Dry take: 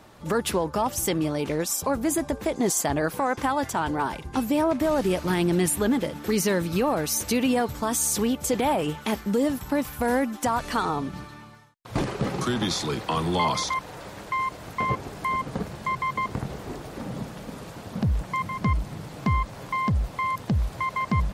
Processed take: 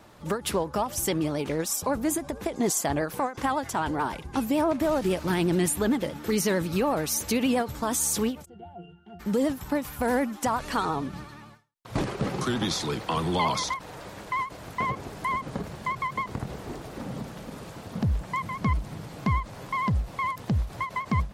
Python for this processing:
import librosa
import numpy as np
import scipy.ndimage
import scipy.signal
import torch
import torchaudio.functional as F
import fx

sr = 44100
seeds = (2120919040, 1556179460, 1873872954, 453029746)

y = fx.vibrato(x, sr, rate_hz=11.0, depth_cents=66.0)
y = fx.octave_resonator(y, sr, note='F', decay_s=0.31, at=(8.44, 9.19), fade=0.02)
y = fx.end_taper(y, sr, db_per_s=200.0)
y = F.gain(torch.from_numpy(y), -1.5).numpy()